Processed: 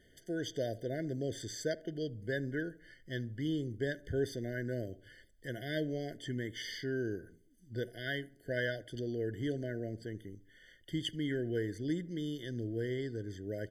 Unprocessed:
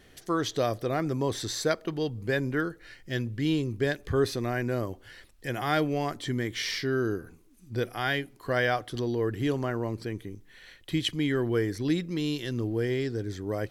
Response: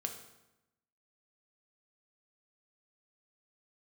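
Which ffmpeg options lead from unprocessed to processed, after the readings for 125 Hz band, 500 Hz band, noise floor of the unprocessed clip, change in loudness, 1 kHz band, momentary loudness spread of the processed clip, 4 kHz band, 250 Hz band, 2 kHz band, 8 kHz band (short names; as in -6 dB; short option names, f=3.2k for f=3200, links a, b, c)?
-8.0 dB, -8.0 dB, -57 dBFS, -8.5 dB, -21.5 dB, 8 LU, -9.5 dB, -8.0 dB, -8.5 dB, -9.5 dB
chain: -filter_complex "[0:a]asplit=2[a][b];[b]adelay=72,lowpass=f=1.3k:p=1,volume=-20dB,asplit=2[c][d];[d]adelay=72,lowpass=f=1.3k:p=1,volume=0.5,asplit=2[e][f];[f]adelay=72,lowpass=f=1.3k:p=1,volume=0.5,asplit=2[g][h];[h]adelay=72,lowpass=f=1.3k:p=1,volume=0.5[i];[a][c][e][g][i]amix=inputs=5:normalize=0,afftfilt=real='re*eq(mod(floor(b*sr/1024/730),2),0)':imag='im*eq(mod(floor(b*sr/1024/730),2),0)':win_size=1024:overlap=0.75,volume=-8dB"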